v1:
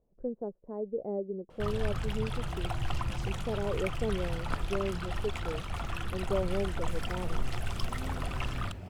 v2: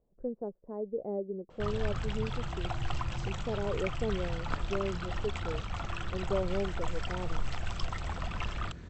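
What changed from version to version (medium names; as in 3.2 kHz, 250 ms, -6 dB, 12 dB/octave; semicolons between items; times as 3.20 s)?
second sound: entry +2.35 s; master: add Chebyshev low-pass 8 kHz, order 10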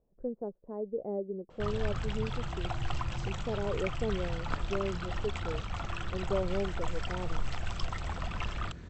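no change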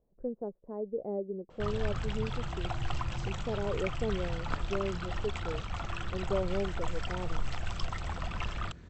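second sound -4.5 dB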